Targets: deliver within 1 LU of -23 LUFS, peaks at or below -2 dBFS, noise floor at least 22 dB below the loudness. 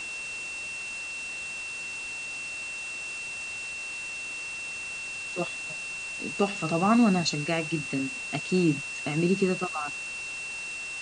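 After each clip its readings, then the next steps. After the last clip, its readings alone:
steady tone 2700 Hz; tone level -34 dBFS; noise floor -37 dBFS; noise floor target -52 dBFS; loudness -29.5 LUFS; peak -10.5 dBFS; loudness target -23.0 LUFS
-> notch 2700 Hz, Q 30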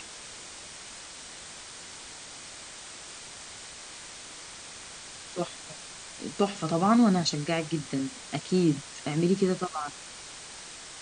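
steady tone none; noise floor -45 dBFS; noise floor target -53 dBFS
-> denoiser 8 dB, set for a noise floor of -45 dBFS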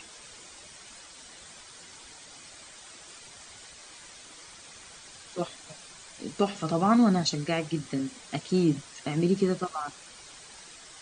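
noise floor -49 dBFS; noise floor target -50 dBFS
-> denoiser 6 dB, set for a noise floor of -49 dBFS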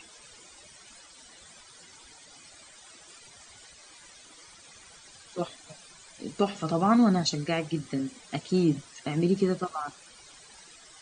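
noise floor -53 dBFS; loudness -28.0 LUFS; peak -11.0 dBFS; loudness target -23.0 LUFS
-> gain +5 dB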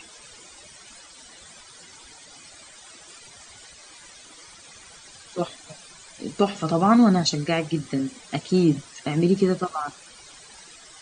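loudness -23.0 LUFS; peak -6.0 dBFS; noise floor -48 dBFS

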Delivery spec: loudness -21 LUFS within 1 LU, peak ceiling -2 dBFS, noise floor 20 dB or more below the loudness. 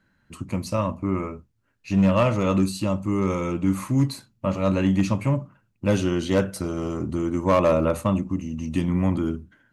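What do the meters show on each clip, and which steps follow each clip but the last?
clipped 0.5%; flat tops at -12.0 dBFS; loudness -24.0 LUFS; peak -12.0 dBFS; loudness target -21.0 LUFS
-> clip repair -12 dBFS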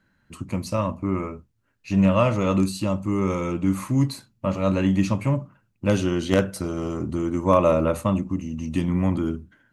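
clipped 0.0%; loudness -23.5 LUFS; peak -3.0 dBFS; loudness target -21.0 LUFS
-> gain +2.5 dB; limiter -2 dBFS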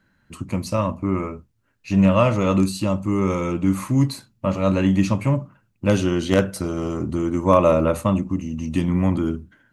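loudness -21.0 LUFS; peak -2.0 dBFS; noise floor -67 dBFS

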